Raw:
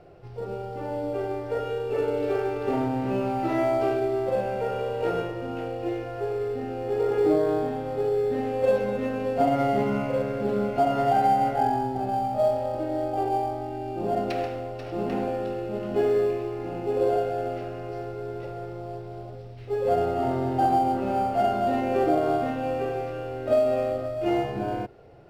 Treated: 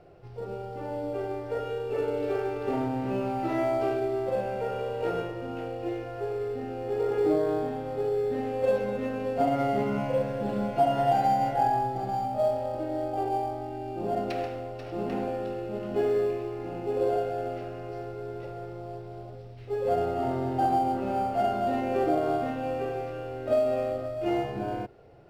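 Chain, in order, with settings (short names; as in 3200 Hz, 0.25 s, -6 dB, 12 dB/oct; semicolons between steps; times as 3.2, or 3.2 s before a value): 9.97–12.25 comb 6 ms, depth 65%; gain -3 dB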